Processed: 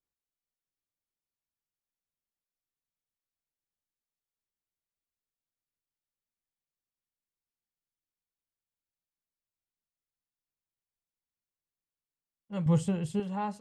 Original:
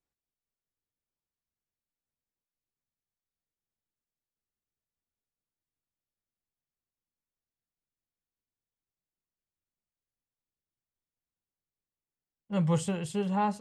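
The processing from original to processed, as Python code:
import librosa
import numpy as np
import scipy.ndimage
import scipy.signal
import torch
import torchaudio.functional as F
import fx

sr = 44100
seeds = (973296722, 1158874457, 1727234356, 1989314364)

y = fx.low_shelf(x, sr, hz=390.0, db=10.0, at=(12.66, 13.2))
y = y * librosa.db_to_amplitude(-5.5)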